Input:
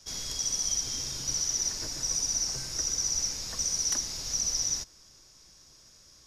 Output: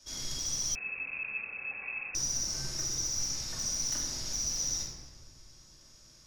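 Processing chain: soft clip -24 dBFS, distortion -17 dB; reverb RT60 1.4 s, pre-delay 3 ms, DRR -3.5 dB; 0.75–2.15 inverted band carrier 2600 Hz; gain -6 dB

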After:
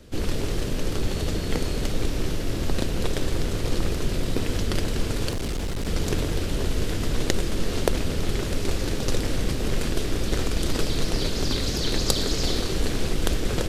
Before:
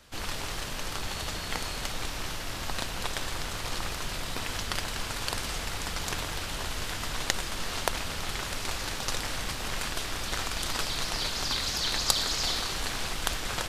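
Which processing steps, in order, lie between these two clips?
resonant low shelf 610 Hz +12 dB, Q 1.5; 5.32–5.88 overloaded stage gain 24 dB

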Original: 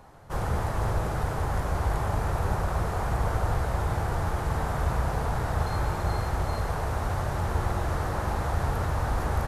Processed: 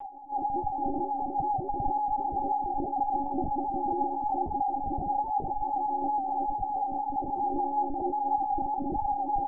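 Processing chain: HPF 120 Hz 6 dB/oct; upward compressor, threshold -39 dBFS; small resonant body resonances 360/790 Hz, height 15 dB, ringing for 45 ms; loudest bins only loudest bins 4; monotone LPC vocoder at 8 kHz 280 Hz

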